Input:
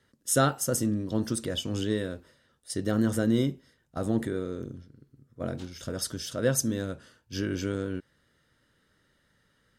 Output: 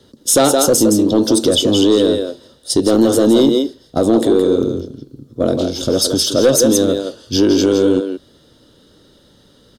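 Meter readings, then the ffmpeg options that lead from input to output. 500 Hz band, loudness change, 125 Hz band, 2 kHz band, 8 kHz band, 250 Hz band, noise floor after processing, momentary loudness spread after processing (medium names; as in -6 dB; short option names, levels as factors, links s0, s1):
+18.5 dB, +15.5 dB, +6.0 dB, +6.5 dB, +15.0 dB, +16.0 dB, -51 dBFS, 10 LU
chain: -filter_complex "[0:a]firequalizer=gain_entry='entry(150,0);entry(290,7);entry(1900,-14);entry(3500,5);entry(7800,-2)':delay=0.05:min_phase=1,acrossover=split=290[s0][s1];[s0]acompressor=threshold=0.0141:ratio=6[s2];[s1]aecho=1:1:167:0.501[s3];[s2][s3]amix=inputs=2:normalize=0,aeval=exprs='(tanh(7.94*val(0)+0.05)-tanh(0.05))/7.94':c=same,alimiter=level_in=11.2:limit=0.891:release=50:level=0:latency=1,volume=0.668"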